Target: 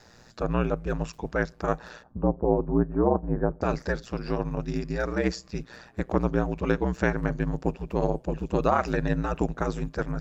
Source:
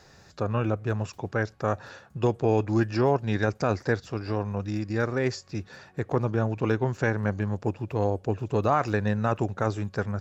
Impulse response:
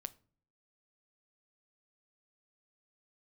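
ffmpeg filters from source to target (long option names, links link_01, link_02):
-filter_complex "[0:a]asplit=3[link_01][link_02][link_03];[link_01]afade=type=out:start_time=2.02:duration=0.02[link_04];[link_02]lowpass=frequency=1100:width=0.5412,lowpass=frequency=1100:width=1.3066,afade=type=in:start_time=2.02:duration=0.02,afade=type=out:start_time=3.61:duration=0.02[link_05];[link_03]afade=type=in:start_time=3.61:duration=0.02[link_06];[link_04][link_05][link_06]amix=inputs=3:normalize=0,asplit=2[link_07][link_08];[1:a]atrim=start_sample=2205,asetrate=41454,aresample=44100[link_09];[link_08][link_09]afir=irnorm=-1:irlink=0,volume=-4.5dB[link_10];[link_07][link_10]amix=inputs=2:normalize=0,aeval=exprs='val(0)*sin(2*PI*59*n/s)':channel_layout=same"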